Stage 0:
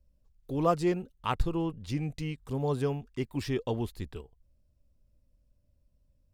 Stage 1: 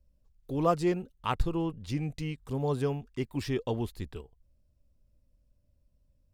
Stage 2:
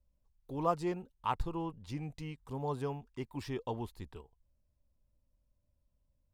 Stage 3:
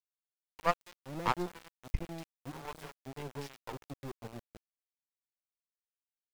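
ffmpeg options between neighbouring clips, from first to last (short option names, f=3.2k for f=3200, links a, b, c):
-af anull
-af "equalizer=f=930:t=o:w=0.64:g=9,volume=-8dB"
-filter_complex "[0:a]acrossover=split=510[a][b];[a]adelay=540[c];[c][b]amix=inputs=2:normalize=0,aeval=exprs='0.119*(cos(1*acos(clip(val(0)/0.119,-1,1)))-cos(1*PI/2))+0.0531*(cos(2*acos(clip(val(0)/0.119,-1,1)))-cos(2*PI/2))+0.0106*(cos(7*acos(clip(val(0)/0.119,-1,1)))-cos(7*PI/2))':c=same,aeval=exprs='val(0)*gte(abs(val(0)),0.00562)':c=same,volume=3dB"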